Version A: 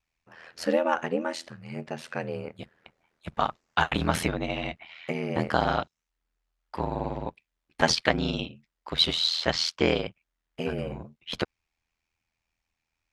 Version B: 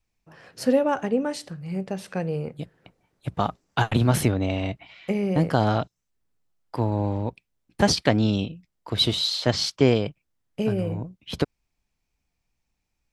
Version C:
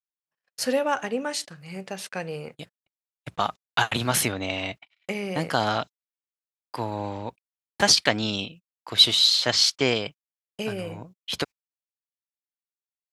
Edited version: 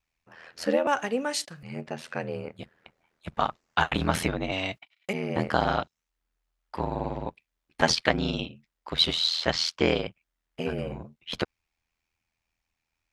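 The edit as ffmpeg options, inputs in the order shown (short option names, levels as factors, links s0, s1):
-filter_complex "[2:a]asplit=2[s0][s1];[0:a]asplit=3[s2][s3][s4];[s2]atrim=end=0.872[s5];[s0]atrim=start=0.868:end=1.632[s6];[s3]atrim=start=1.628:end=4.522[s7];[s1]atrim=start=4.518:end=5.132[s8];[s4]atrim=start=5.128[s9];[s5][s6]acrossfade=d=0.004:c1=hsin:c2=hsin[s10];[s10][s7]acrossfade=d=0.004:c1=hsin:c2=hsin[s11];[s11][s8]acrossfade=d=0.004:c1=hsin:c2=hsin[s12];[s12][s9]acrossfade=d=0.004:c1=hsin:c2=hsin"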